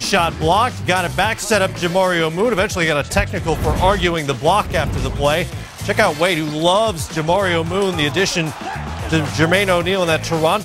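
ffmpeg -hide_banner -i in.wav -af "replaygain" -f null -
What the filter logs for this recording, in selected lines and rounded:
track_gain = -2.1 dB
track_peak = 0.523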